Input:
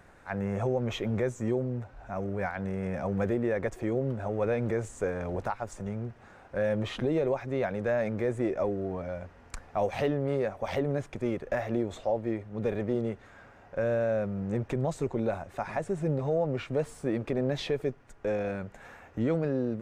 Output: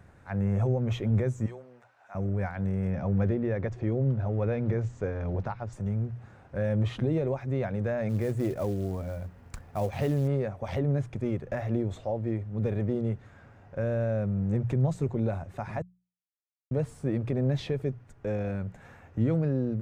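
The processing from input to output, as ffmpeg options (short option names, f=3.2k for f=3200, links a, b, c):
-filter_complex "[0:a]asettb=1/sr,asplit=3[a][b][c];[a]atrim=end=1.464[d];[b]atrim=start=1.46:end=2.15,asetpts=PTS-STARTPTS,afade=t=in:d=0.004:c=qsin,afade=t=out:st=0.686:d=0.004:c=qsin,highpass=900[e];[c]atrim=start=2.146[f];[d][e]acrossfade=d=0.004:c1=hsin:c2=qsin[g];[g][f]acrossfade=d=0.004:c1=qsin:c2=hsin,asettb=1/sr,asplit=3[h][i][j];[h]atrim=end=2.914[k];[i]atrim=start=2.91:end=5.73,asetpts=PTS-STARTPTS,afade=t=in:d=0.004:c=qsin,afade=t=out:st=2.816:d=0.004:c=qsin,lowpass=f=5.8k:w=0.5412,lowpass=f=5.8k:w=1.3066[l];[j]atrim=start=5.726[m];[k][l]acrossfade=d=0.004:c1=hsin:c2=qsin[n];[n][m]acrossfade=d=0.004:c1=qsin:c2=hsin,asettb=1/sr,asplit=3[o][p][q];[o]atrim=end=8.094[r];[p]atrim=start=8.09:end=10.28,asetpts=PTS-STARTPTS,afade=t=in:d=0.004:c=qsin,afade=t=out:st=2.186:d=0.004:c=qsin,acrusher=bits=5:mode=log:mix=0:aa=0.000001[s];[q]atrim=start=10.276[t];[r][s]acrossfade=d=0.004:c1=hsin:c2=qsin[u];[u][t]acrossfade=d=0.004:c1=qsin:c2=hsin,asplit=3[v][w][x];[v]atrim=end=15.82,asetpts=PTS-STARTPTS,afade=t=out:st=15.816:d=0.004:c=hsin[y];[w]atrim=start=15.82:end=16.71,asetpts=PTS-STARTPTS,volume=0[z];[x]atrim=start=16.71,asetpts=PTS-STARTPTS,afade=t=in:d=0.004:c=hsin[aa];[y][z][aa]concat=n=3:v=0:a=1,equalizer=f=110:t=o:w=1.9:g=14,bandreject=f=60:t=h:w=6,bandreject=f=120:t=h:w=6,bandreject=f=180:t=h:w=6,volume=-4.5dB"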